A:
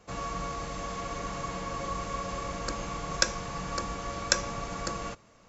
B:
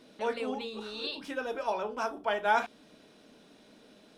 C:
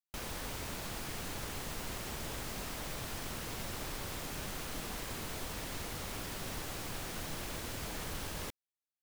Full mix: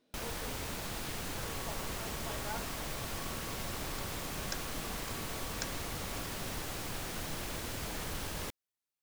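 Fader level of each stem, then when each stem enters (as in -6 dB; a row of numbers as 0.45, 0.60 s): -16.0, -17.0, +1.5 dB; 1.30, 0.00, 0.00 s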